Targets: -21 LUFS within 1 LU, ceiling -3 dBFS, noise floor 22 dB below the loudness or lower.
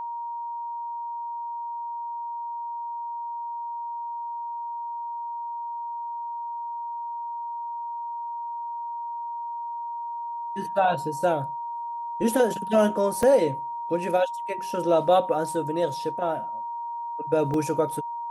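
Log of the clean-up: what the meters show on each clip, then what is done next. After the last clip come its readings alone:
dropouts 2; longest dropout 2.5 ms; steady tone 940 Hz; tone level -30 dBFS; loudness -28.0 LUFS; peak level -9.5 dBFS; loudness target -21.0 LUFS
-> interpolate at 13.23/17.54 s, 2.5 ms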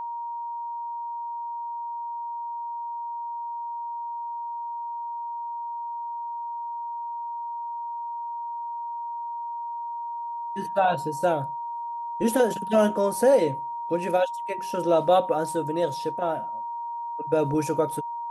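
dropouts 0; steady tone 940 Hz; tone level -30 dBFS
-> band-stop 940 Hz, Q 30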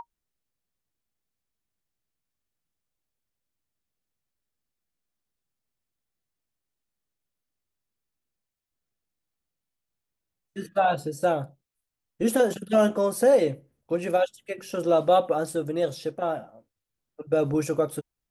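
steady tone not found; loudness -25.0 LUFS; peak level -10.0 dBFS; loudness target -21.0 LUFS
-> trim +4 dB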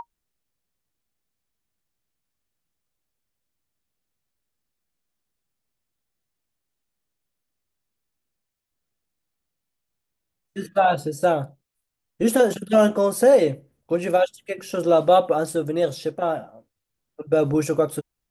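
loudness -21.0 LUFS; peak level -6.0 dBFS; noise floor -81 dBFS

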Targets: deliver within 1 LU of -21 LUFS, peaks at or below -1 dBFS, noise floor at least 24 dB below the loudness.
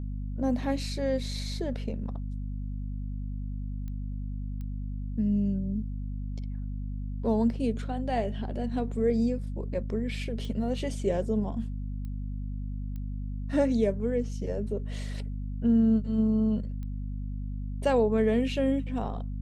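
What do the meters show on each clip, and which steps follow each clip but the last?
clicks found 6; hum 50 Hz; highest harmonic 250 Hz; hum level -31 dBFS; loudness -30.5 LUFS; peak level -13.5 dBFS; loudness target -21.0 LUFS
-> de-click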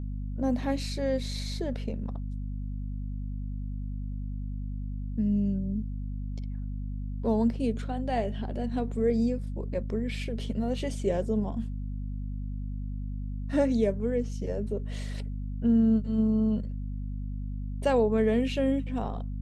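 clicks found 0; hum 50 Hz; highest harmonic 250 Hz; hum level -31 dBFS
-> de-hum 50 Hz, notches 5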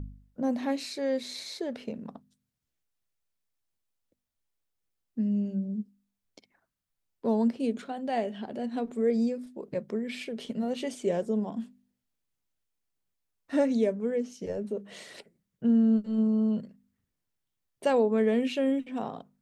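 hum not found; loudness -29.5 LUFS; peak level -14.5 dBFS; loudness target -21.0 LUFS
-> trim +8.5 dB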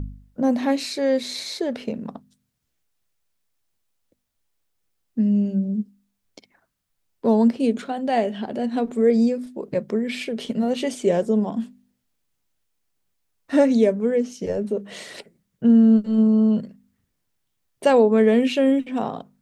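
loudness -21.0 LUFS; peak level -6.0 dBFS; noise floor -75 dBFS

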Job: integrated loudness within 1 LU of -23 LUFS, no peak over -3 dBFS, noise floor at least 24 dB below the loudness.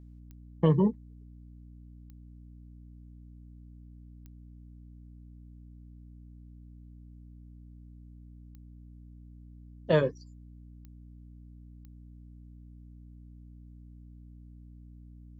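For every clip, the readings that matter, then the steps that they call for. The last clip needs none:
clicks found 6; hum 60 Hz; highest harmonic 300 Hz; hum level -47 dBFS; loudness -27.0 LUFS; peak level -12.0 dBFS; loudness target -23.0 LUFS
-> de-click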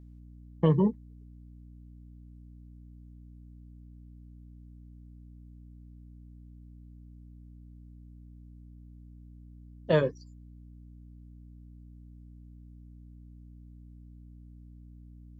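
clicks found 0; hum 60 Hz; highest harmonic 300 Hz; hum level -47 dBFS
-> hum notches 60/120/180/240/300 Hz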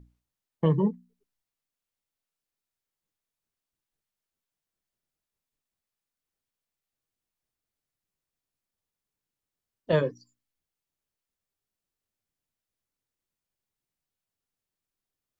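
hum not found; loudness -27.0 LUFS; peak level -12.0 dBFS; loudness target -23.0 LUFS
-> trim +4 dB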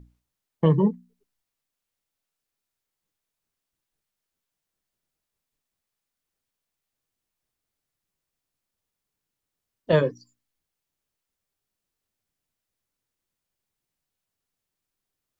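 loudness -23.0 LUFS; peak level -8.0 dBFS; noise floor -85 dBFS

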